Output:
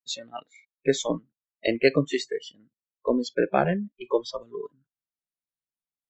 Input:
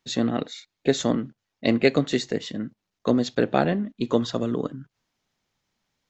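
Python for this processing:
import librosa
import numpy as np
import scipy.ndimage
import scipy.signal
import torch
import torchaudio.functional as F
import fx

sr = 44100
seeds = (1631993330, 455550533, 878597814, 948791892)

y = fx.noise_reduce_blind(x, sr, reduce_db=28)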